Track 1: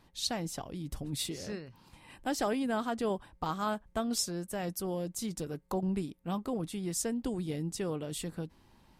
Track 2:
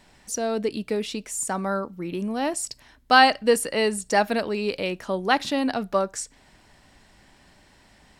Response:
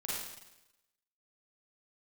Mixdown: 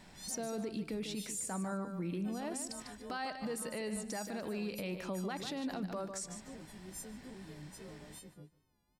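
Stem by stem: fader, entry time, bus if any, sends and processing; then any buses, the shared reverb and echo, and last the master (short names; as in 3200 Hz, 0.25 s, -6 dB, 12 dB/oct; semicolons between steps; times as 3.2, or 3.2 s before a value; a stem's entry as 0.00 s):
-18.5 dB, 0.00 s, no send, echo send -21.5 dB, frequency quantiser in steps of 3 st; tilt shelf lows +5.5 dB, about 660 Hz; wow and flutter 69 cents
-2.0 dB, 0.00 s, no send, echo send -9.5 dB, bell 180 Hz +7 dB 0.64 oct; compressor 2.5:1, threshold -35 dBFS, peak gain reduction 16 dB; limiter -27 dBFS, peak gain reduction 8 dB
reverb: off
echo: feedback echo 0.148 s, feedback 25%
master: notch 2900 Hz, Q 23; limiter -30.5 dBFS, peak gain reduction 5 dB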